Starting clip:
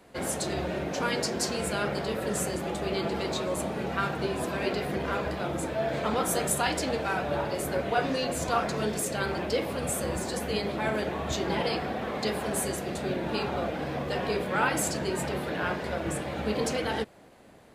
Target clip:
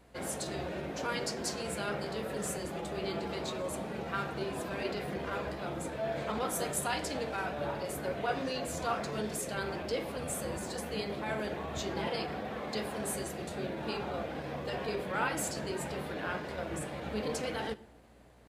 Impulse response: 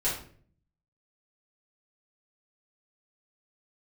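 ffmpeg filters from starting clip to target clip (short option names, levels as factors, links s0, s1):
-filter_complex "[0:a]bandreject=f=60:t=h:w=6,bandreject=f=120:t=h:w=6,bandreject=f=180:t=h:w=6,bandreject=f=240:t=h:w=6,bandreject=f=300:t=h:w=6,bandreject=f=360:t=h:w=6,aeval=exprs='val(0)+0.00141*(sin(2*PI*60*n/s)+sin(2*PI*2*60*n/s)/2+sin(2*PI*3*60*n/s)/3+sin(2*PI*4*60*n/s)/4+sin(2*PI*5*60*n/s)/5)':c=same,atempo=0.96,asplit=2[s0][s1];[1:a]atrim=start_sample=2205,asetrate=28665,aresample=44100[s2];[s1][s2]afir=irnorm=-1:irlink=0,volume=0.0447[s3];[s0][s3]amix=inputs=2:normalize=0,volume=0.473"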